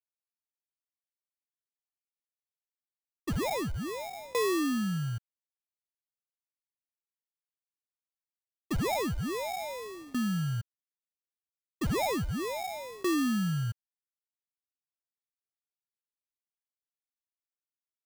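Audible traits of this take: aliases and images of a low sample rate 1500 Hz, jitter 0%; tremolo saw down 0.69 Hz, depth 95%; a quantiser's noise floor 10-bit, dither none; AC-3

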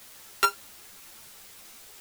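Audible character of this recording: a buzz of ramps at a fixed pitch in blocks of 32 samples; tremolo saw up 7.5 Hz, depth 45%; a quantiser's noise floor 8-bit, dither triangular; a shimmering, thickened sound

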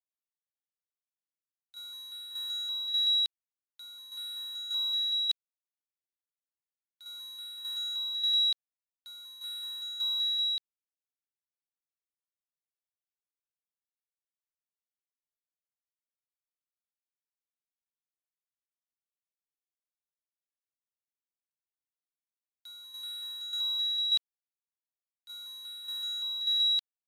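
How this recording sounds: a quantiser's noise floor 8-bit, dither none; tremolo saw down 1.7 Hz, depth 60%; AAC

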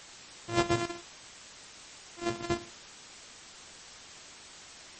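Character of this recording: a buzz of ramps at a fixed pitch in blocks of 128 samples; random-step tremolo 3.5 Hz; a quantiser's noise floor 8-bit, dither triangular; MP3

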